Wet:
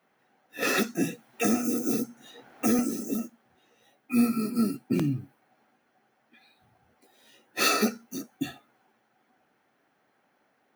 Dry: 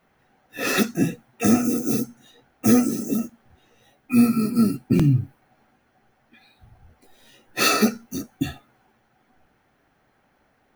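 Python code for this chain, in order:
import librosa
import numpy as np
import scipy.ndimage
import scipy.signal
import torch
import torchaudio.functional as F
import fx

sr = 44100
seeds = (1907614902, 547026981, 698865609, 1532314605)

y = scipy.signal.sosfilt(scipy.signal.butter(2, 210.0, 'highpass', fs=sr, output='sos'), x)
y = fx.band_squash(y, sr, depth_pct=70, at=(0.62, 2.79))
y = F.gain(torch.from_numpy(y), -4.5).numpy()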